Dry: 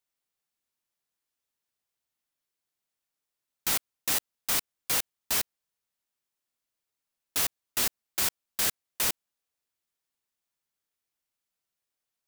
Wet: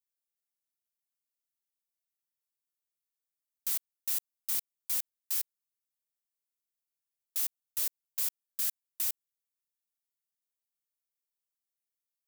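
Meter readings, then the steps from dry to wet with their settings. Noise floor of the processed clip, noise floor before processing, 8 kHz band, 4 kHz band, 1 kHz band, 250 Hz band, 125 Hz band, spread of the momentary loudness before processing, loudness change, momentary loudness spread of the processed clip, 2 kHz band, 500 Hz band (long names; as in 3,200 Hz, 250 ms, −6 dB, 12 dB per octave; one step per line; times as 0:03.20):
below −85 dBFS, below −85 dBFS, −6.5 dB, −11.5 dB, −19.0 dB, below −20 dB, below −20 dB, 1 LU, −4.0 dB, 1 LU, −16.0 dB, below −15 dB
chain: first-order pre-emphasis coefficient 0.8
level −6.5 dB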